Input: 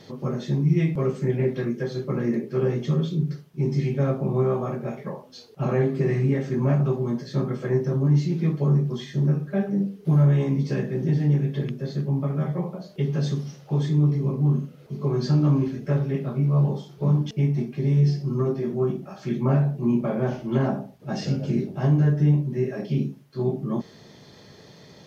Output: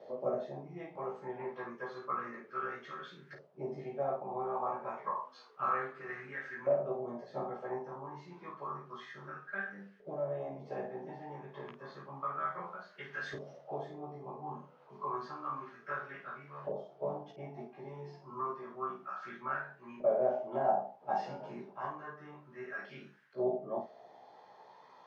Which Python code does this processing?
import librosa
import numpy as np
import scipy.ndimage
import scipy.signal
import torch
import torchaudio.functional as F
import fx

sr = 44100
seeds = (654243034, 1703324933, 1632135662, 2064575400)

p1 = fx.low_shelf(x, sr, hz=350.0, db=-8.0)
p2 = fx.rider(p1, sr, range_db=4, speed_s=0.5)
p3 = fx.filter_lfo_bandpass(p2, sr, shape='saw_up', hz=0.3, low_hz=580.0, high_hz=1700.0, q=5.6)
p4 = p3 + fx.room_early_taps(p3, sr, ms=(16, 51), db=(-3.0, -6.0), dry=0)
y = p4 * 10.0 ** (5.0 / 20.0)